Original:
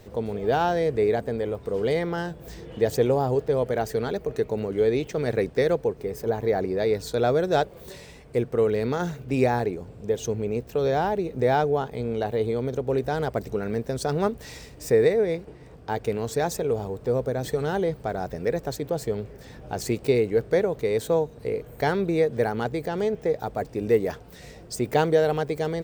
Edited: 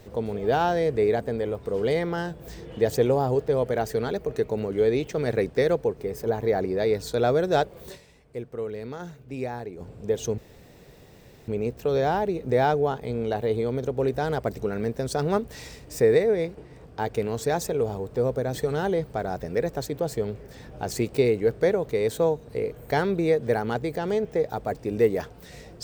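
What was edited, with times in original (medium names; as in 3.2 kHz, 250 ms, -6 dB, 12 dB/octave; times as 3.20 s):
7.94–9.81 s: dip -10 dB, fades 0.30 s exponential
10.38 s: insert room tone 1.10 s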